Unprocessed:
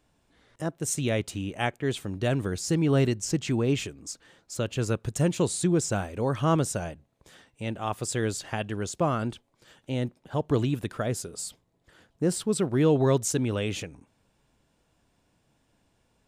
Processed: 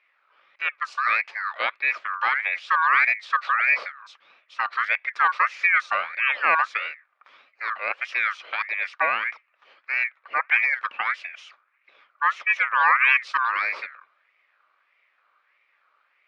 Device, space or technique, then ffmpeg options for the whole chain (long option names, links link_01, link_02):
voice changer toy: -filter_complex "[0:a]aeval=exprs='val(0)*sin(2*PI*1700*n/s+1700*0.25/1.6*sin(2*PI*1.6*n/s))':channel_layout=same,highpass=530,equalizer=frequency=560:width_type=q:width=4:gain=7,equalizer=frequency=1200:width_type=q:width=4:gain=9,equalizer=frequency=2400:width_type=q:width=4:gain=8,lowpass=frequency=3800:width=0.5412,lowpass=frequency=3800:width=1.3066,asettb=1/sr,asplit=3[link_01][link_02][link_03];[link_01]atrim=end=7.794[link_04];[link_02]atrim=start=7.79:end=8.65,asetpts=PTS-STARTPTS,afade=type=in:duration=0.004:curve=qsin,afade=type=out:start_time=0.856:duration=0.004:curve=qsin,equalizer=frequency=160:width_type=o:width=1.5:gain=-8[link_05];[link_03]atrim=start=8.646[link_06];[link_04][link_05]acrossfade=duration=0.004:curve1=hsin:curve2=qsin[link_07];[link_07][link_06]acrossfade=duration=0.004:curve1=qsin:curve2=hsin,volume=1.5dB"